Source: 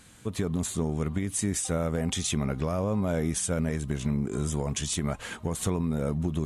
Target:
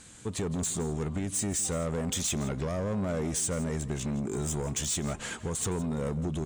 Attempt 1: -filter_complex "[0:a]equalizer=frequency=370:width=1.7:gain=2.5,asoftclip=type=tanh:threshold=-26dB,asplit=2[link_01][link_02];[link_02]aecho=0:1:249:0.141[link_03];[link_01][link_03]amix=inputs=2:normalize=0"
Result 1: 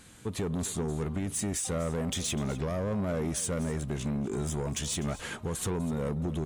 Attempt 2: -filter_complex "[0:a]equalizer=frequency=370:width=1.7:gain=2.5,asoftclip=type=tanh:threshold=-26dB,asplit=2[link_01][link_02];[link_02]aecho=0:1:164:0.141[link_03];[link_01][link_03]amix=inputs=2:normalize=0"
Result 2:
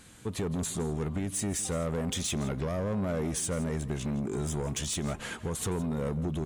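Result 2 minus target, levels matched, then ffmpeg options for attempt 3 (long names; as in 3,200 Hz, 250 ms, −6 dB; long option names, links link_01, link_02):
8,000 Hz band −2.5 dB
-filter_complex "[0:a]lowpass=frequency=7900:width_type=q:width=2.3,equalizer=frequency=370:width=1.7:gain=2.5,asoftclip=type=tanh:threshold=-26dB,asplit=2[link_01][link_02];[link_02]aecho=0:1:164:0.141[link_03];[link_01][link_03]amix=inputs=2:normalize=0"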